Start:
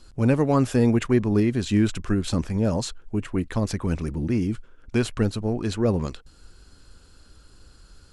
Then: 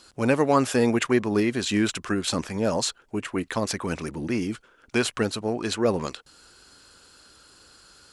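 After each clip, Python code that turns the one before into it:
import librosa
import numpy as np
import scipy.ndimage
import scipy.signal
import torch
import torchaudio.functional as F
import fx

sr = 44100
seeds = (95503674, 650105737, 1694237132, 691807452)

y = fx.highpass(x, sr, hz=640.0, slope=6)
y = y * 10.0 ** (6.0 / 20.0)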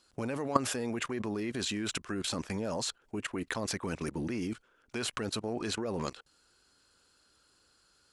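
y = fx.level_steps(x, sr, step_db=17)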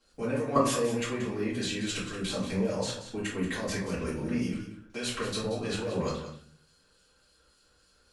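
y = fx.harmonic_tremolo(x, sr, hz=3.5, depth_pct=50, crossover_hz=2400.0)
y = y + 10.0 ** (-11.5 / 20.0) * np.pad(y, (int(181 * sr / 1000.0), 0))[:len(y)]
y = fx.room_shoebox(y, sr, seeds[0], volume_m3=44.0, walls='mixed', distance_m=2.2)
y = y * 10.0 ** (-6.5 / 20.0)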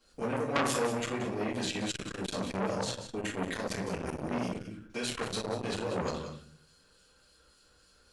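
y = fx.transformer_sat(x, sr, knee_hz=2200.0)
y = y * 10.0 ** (1.5 / 20.0)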